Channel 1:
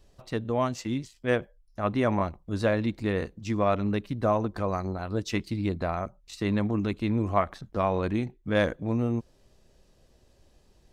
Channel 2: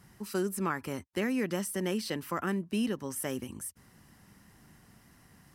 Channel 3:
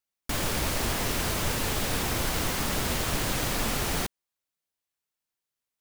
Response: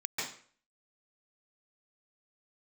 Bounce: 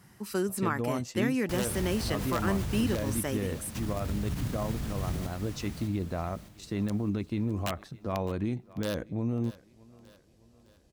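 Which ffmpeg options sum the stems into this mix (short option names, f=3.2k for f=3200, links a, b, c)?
-filter_complex "[0:a]highshelf=f=6k:g=7.5,aeval=exprs='(mod(4.73*val(0)+1,2)-1)/4.73':c=same,adelay=300,volume=-7dB,asplit=2[a][b];[b]volume=-22dB[c];[1:a]volume=1.5dB[d];[2:a]asubboost=boost=7:cutoff=190,adelay=1200,volume=-12dB,asplit=3[e][f][g];[e]atrim=end=3.19,asetpts=PTS-STARTPTS,afade=t=out:st=3.186:d=0.004:c=hsin[h];[f]atrim=start=3.19:end=3.75,asetpts=PTS-STARTPTS,volume=0[i];[g]atrim=start=3.75,asetpts=PTS-STARTPTS,afade=t=in:d=0.004:c=hsin[j];[h][i][j]concat=n=3:v=0:a=1,asplit=2[k][l];[l]volume=-8.5dB[m];[a][k]amix=inputs=2:normalize=0,lowshelf=f=480:g=7.5,alimiter=limit=-21.5dB:level=0:latency=1:release=45,volume=0dB[n];[c][m]amix=inputs=2:normalize=0,aecho=0:1:610|1220|1830|2440|3050|3660|4270:1|0.47|0.221|0.104|0.0488|0.0229|0.0108[o];[d][n][o]amix=inputs=3:normalize=0,highpass=62"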